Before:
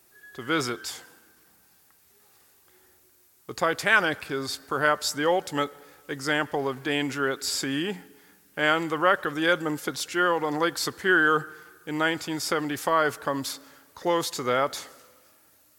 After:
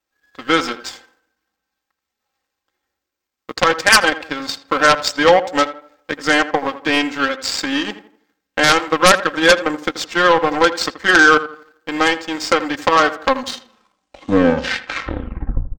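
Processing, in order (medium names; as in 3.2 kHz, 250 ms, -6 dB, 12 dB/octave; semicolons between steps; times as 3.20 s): tape stop on the ending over 2.60 s; peaking EQ 190 Hz -5.5 dB 1.6 oct; comb 3.8 ms, depth 91%; in parallel at +3 dB: compression, threshold -33 dBFS, peak gain reduction 20 dB; on the sum: power-law waveshaper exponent 2; boxcar filter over 4 samples; sine folder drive 16 dB, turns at -2.5 dBFS; on a send: tape echo 82 ms, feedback 41%, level -11.5 dB, low-pass 1.8 kHz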